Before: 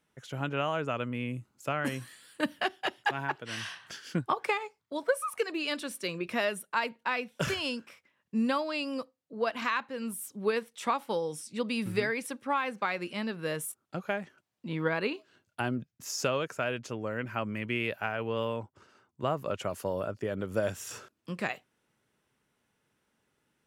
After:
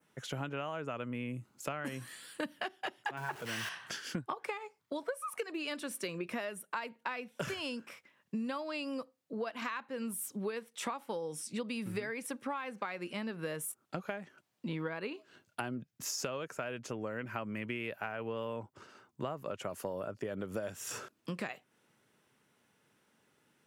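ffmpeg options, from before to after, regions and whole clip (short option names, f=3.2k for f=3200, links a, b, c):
-filter_complex "[0:a]asettb=1/sr,asplit=3[a][b][c];[a]atrim=end=3.174[d];[b]atrim=start=3.17:end=3.69,asetpts=PTS-STARTPTS,afade=t=in:d=0.004:c=qsin,afade=t=out:st=0.516:d=0.004:c=qsin,aeval=exprs='val(0)+0.5*0.0119*sgn(val(0))':c=same,bandreject=f=280:w=8.5[e];[c]atrim=start=3.686[f];[d][e]acrossfade=d=0.004:c1=hsin:c2=qsin[g];[g][f]acrossfade=d=0.004:c1=qsin:c2=hsin,highpass=110,adynamicequalizer=threshold=0.00251:dfrequency=4000:dqfactor=1.2:tfrequency=4000:tqfactor=1.2:attack=5:release=100:ratio=0.375:range=2.5:mode=cutabove:tftype=bell,acompressor=threshold=-40dB:ratio=6,volume=4.5dB"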